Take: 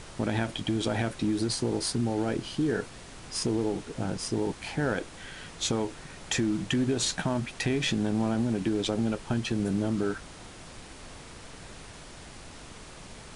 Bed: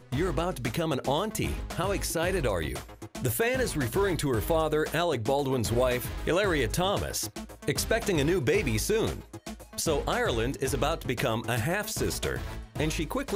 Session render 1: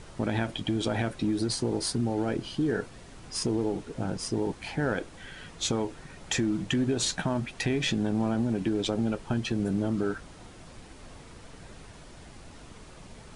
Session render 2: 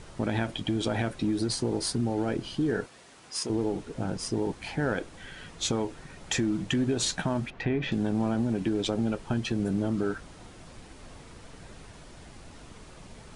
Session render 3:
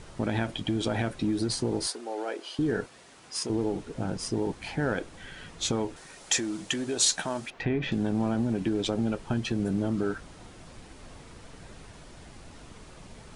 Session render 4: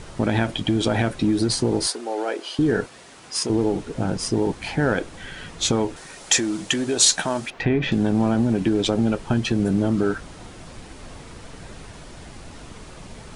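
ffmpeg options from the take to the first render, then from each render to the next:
-af "afftdn=nr=6:nf=-46"
-filter_complex "[0:a]asettb=1/sr,asplit=3[s0][s1][s2];[s0]atrim=end=2.864[s3];[s1]atrim=start=2.86:end=3.5,asetpts=PTS-STARTPTS,afade=t=in:d=0.004:c=qsin,afade=t=out:st=0.636:d=0.004:c=qsin,highpass=f=570:p=1[s4];[s2]atrim=start=3.496[s5];[s3][s4]acrossfade=d=0.004:c1=hsin:c2=qsin[s6];[s6][s5]acrossfade=d=0.004:c1=qsin:c2=hsin,asettb=1/sr,asplit=3[s7][s8][s9];[s7]atrim=end=7.504[s10];[s8]atrim=start=7.5:end=7.92,asetpts=PTS-STARTPTS,afade=t=in:d=0.004:c=qsin,afade=t=out:st=0.416:d=0.004:c=qsin,lowpass=2200[s11];[s9]atrim=start=7.916[s12];[s10][s11]acrossfade=d=0.004:c1=hsin:c2=qsin[s13];[s13][s12]acrossfade=d=0.004:c1=qsin:c2=hsin"
-filter_complex "[0:a]asettb=1/sr,asplit=3[s0][s1][s2];[s0]atrim=end=1.874[s3];[s1]atrim=start=1.87:end=2.59,asetpts=PTS-STARTPTS,afade=t=in:d=0.004:c=qsin,afade=t=out:st=0.716:d=0.004:c=qsin,highpass=f=410:w=0.5412,highpass=f=410:w=1.3066[s4];[s2]atrim=start=2.586[s5];[s3][s4]acrossfade=d=0.004:c1=hsin:c2=qsin[s6];[s6][s5]acrossfade=d=0.004:c1=qsin:c2=hsin,asettb=1/sr,asplit=3[s7][s8][s9];[s7]atrim=end=5.964[s10];[s8]atrim=start=5.96:end=7.6,asetpts=PTS-STARTPTS,afade=t=in:d=0.004:c=qsin,afade=t=out:st=1.636:d=0.004:c=qsin,bass=f=250:g=-13,treble=f=4000:g=8[s11];[s9]atrim=start=7.596[s12];[s10][s11]acrossfade=d=0.004:c1=hsin:c2=qsin[s13];[s13][s12]acrossfade=d=0.004:c1=qsin:c2=hsin"
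-af "volume=2.37"

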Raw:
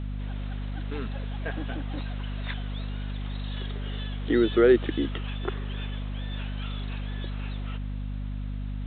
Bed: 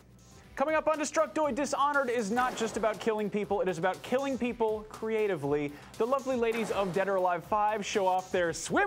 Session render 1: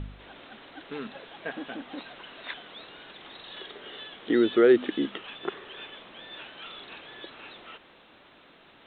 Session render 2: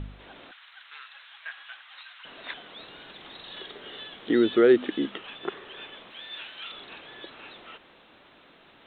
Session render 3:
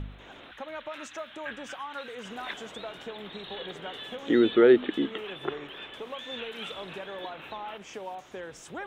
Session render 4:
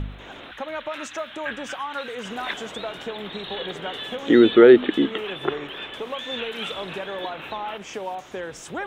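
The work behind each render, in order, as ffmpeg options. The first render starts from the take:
-af "bandreject=f=50:t=h:w=4,bandreject=f=100:t=h:w=4,bandreject=f=150:t=h:w=4,bandreject=f=200:t=h:w=4,bandreject=f=250:t=h:w=4"
-filter_complex "[0:a]asettb=1/sr,asplit=3[s0][s1][s2];[s0]atrim=end=0.514[s3];[s1]atrim=start=0.51:end=2.25,asetpts=PTS-STARTPTS,afade=t=in:d=0.004:c=qsin,afade=t=out:st=1.736:d=0.004:c=qsin,highpass=f=1200:w=0.5412,highpass=f=1200:w=1.3066[s4];[s2]atrim=start=2.246[s5];[s3][s4]acrossfade=d=0.004:c1=hsin:c2=qsin[s6];[s6][s5]acrossfade=d=0.004:c1=qsin:c2=hsin,asettb=1/sr,asplit=3[s7][s8][s9];[s7]atrim=end=2.794[s10];[s8]atrim=start=2.79:end=4.75,asetpts=PTS-STARTPTS,afade=t=in:d=0.004:c=qsin,afade=t=out:st=1.956:d=0.004:c=qsin,bass=f=250:g=3,treble=f=4000:g=4[s11];[s9]atrim=start=4.746[s12];[s10][s11]acrossfade=d=0.004:c1=hsin:c2=qsin[s13];[s13][s12]acrossfade=d=0.004:c1=qsin:c2=hsin,asettb=1/sr,asplit=3[s14][s15][s16];[s14]atrim=end=6.104[s17];[s15]atrim=start=6.1:end=6.72,asetpts=PTS-STARTPTS,afade=t=in:d=0.004:c=qsin,afade=t=out:st=0.616:d=0.004:c=qsin,tiltshelf=f=1300:g=-6.5[s18];[s16]atrim=start=6.716[s19];[s17][s18]acrossfade=d=0.004:c1=hsin:c2=qsin[s20];[s20][s19]acrossfade=d=0.004:c1=qsin:c2=hsin"
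-filter_complex "[1:a]volume=0.266[s0];[0:a][s0]amix=inputs=2:normalize=0"
-af "volume=2.37,alimiter=limit=0.794:level=0:latency=1"

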